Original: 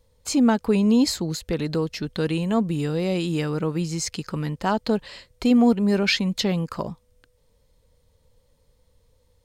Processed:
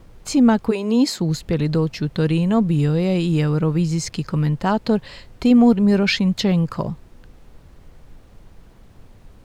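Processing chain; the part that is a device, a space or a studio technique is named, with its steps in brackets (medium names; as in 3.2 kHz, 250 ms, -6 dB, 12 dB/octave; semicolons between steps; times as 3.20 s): car interior (peaking EQ 130 Hz +8.5 dB 0.92 oct; treble shelf 4.9 kHz -5 dB; brown noise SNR 24 dB); 0.70–1.19 s: high-pass 370 Hz -> 170 Hz 24 dB/octave; trim +2.5 dB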